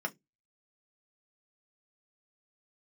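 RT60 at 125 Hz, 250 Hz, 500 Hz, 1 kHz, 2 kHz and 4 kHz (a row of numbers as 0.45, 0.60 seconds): 0.30, 0.25, 0.20, 0.10, 0.15, 0.15 seconds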